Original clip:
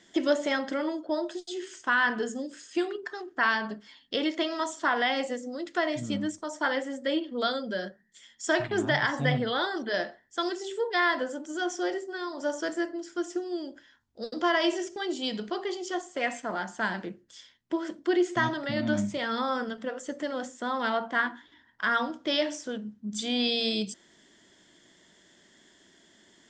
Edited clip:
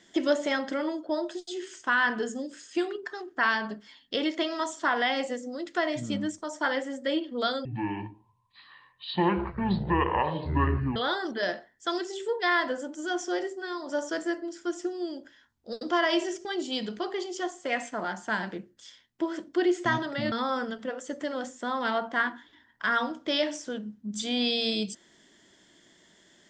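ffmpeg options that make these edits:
ffmpeg -i in.wav -filter_complex "[0:a]asplit=4[link_01][link_02][link_03][link_04];[link_01]atrim=end=7.654[link_05];[link_02]atrim=start=7.65:end=9.47,asetpts=PTS-STARTPTS,asetrate=24255,aresample=44100[link_06];[link_03]atrim=start=9.466:end=18.832[link_07];[link_04]atrim=start=19.308[link_08];[link_05][link_06]acrossfade=duration=0.004:curve1=hsin:curve2=hsin[link_09];[link_09][link_07]acrossfade=duration=0.004:curve1=hsin:curve2=hsin[link_10];[link_10][link_08]acrossfade=duration=0.004:curve1=hsin:curve2=hsin" out.wav

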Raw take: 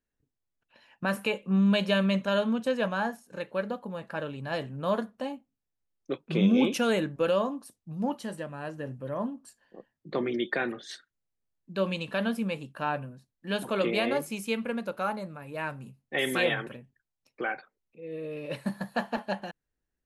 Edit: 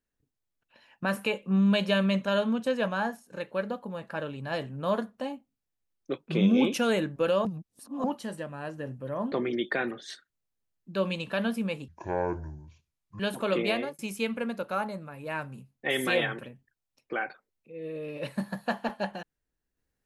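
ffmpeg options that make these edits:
ffmpeg -i in.wav -filter_complex "[0:a]asplit=7[link_01][link_02][link_03][link_04][link_05][link_06][link_07];[link_01]atrim=end=7.452[link_08];[link_02]atrim=start=7.448:end=8.042,asetpts=PTS-STARTPTS,areverse[link_09];[link_03]atrim=start=8.038:end=9.322[link_10];[link_04]atrim=start=10.128:end=12.694[link_11];[link_05]atrim=start=12.69:end=13.48,asetpts=PTS-STARTPTS,asetrate=26460,aresample=44100[link_12];[link_06]atrim=start=13.476:end=14.27,asetpts=PTS-STARTPTS,afade=type=out:start_time=0.524:duration=0.27[link_13];[link_07]atrim=start=14.27,asetpts=PTS-STARTPTS,afade=type=in:duration=0.004:curve=hsin[link_14];[link_08][link_09]acrossfade=duration=0.004:curve1=hsin:curve2=hsin[link_15];[link_15][link_10]acrossfade=duration=0.004:curve1=hsin:curve2=hsin[link_16];[link_16][link_11]acrossfade=duration=0.004:curve1=hsin:curve2=hsin[link_17];[link_17][link_12]acrossfade=duration=0.004:curve1=hsin:curve2=hsin[link_18];[link_13][link_14]concat=n=2:v=0:a=1[link_19];[link_18][link_19]acrossfade=duration=0.004:curve1=hsin:curve2=hsin" out.wav

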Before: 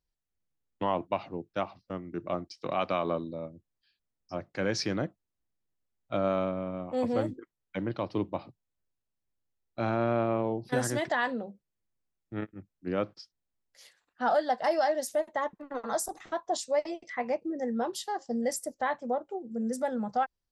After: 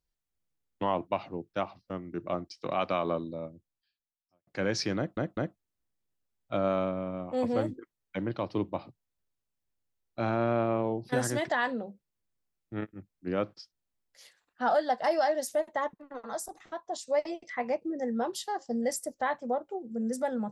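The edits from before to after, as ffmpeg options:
ffmpeg -i in.wav -filter_complex "[0:a]asplit=6[link_01][link_02][link_03][link_04][link_05][link_06];[link_01]atrim=end=4.47,asetpts=PTS-STARTPTS,afade=type=out:start_time=3.47:duration=1:curve=qua[link_07];[link_02]atrim=start=4.47:end=5.172,asetpts=PTS-STARTPTS,afade=type=in:duration=0.004:curve=hsin[link_08];[link_03]atrim=start=4.968:end=5.172[link_09];[link_04]atrim=start=4.968:end=15.542[link_10];[link_05]atrim=start=15.538:end=16.672,asetpts=PTS-STARTPTS,volume=-5.5dB[link_11];[link_06]atrim=start=16.668[link_12];[link_07][link_08]concat=n=2:v=0:a=1[link_13];[link_13][link_09]acrossfade=duration=0.004:curve1=hsin:curve2=hsin[link_14];[link_14][link_10]acrossfade=duration=0.004:curve1=hsin:curve2=hsin[link_15];[link_15][link_11]acrossfade=duration=0.004:curve1=hsin:curve2=hsin[link_16];[link_16][link_12]acrossfade=duration=0.004:curve1=hsin:curve2=hsin" out.wav

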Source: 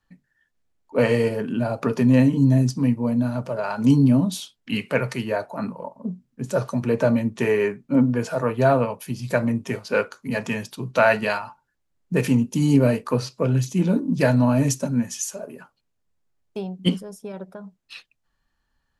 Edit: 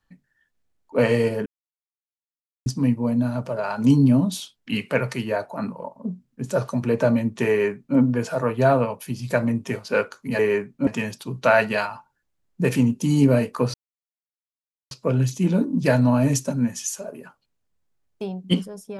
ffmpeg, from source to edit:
ffmpeg -i in.wav -filter_complex "[0:a]asplit=6[link_01][link_02][link_03][link_04][link_05][link_06];[link_01]atrim=end=1.46,asetpts=PTS-STARTPTS,afade=type=out:start_time=1.456:duration=0.004:curve=hsin[link_07];[link_02]atrim=start=1.46:end=2.66,asetpts=PTS-STARTPTS,volume=0[link_08];[link_03]atrim=start=2.66:end=10.392,asetpts=PTS-STARTPTS,afade=type=in:duration=0.004:curve=hsin[link_09];[link_04]atrim=start=7.488:end=7.972[link_10];[link_05]atrim=start=10.388:end=13.26,asetpts=PTS-STARTPTS,afade=type=out:start_time=2.868:duration=0.004:curve=hsin,apad=pad_dur=1.17[link_11];[link_06]atrim=start=13.26,asetpts=PTS-STARTPTS,afade=type=in:duration=0.004:curve=hsin[link_12];[link_07][link_08][link_09]concat=n=3:v=0:a=1[link_13];[link_13][link_10]acrossfade=duration=0.004:curve1=hsin:curve2=hsin[link_14];[link_11][link_12]concat=n=2:v=0:a=1[link_15];[link_14][link_15]acrossfade=duration=0.004:curve1=hsin:curve2=hsin" out.wav

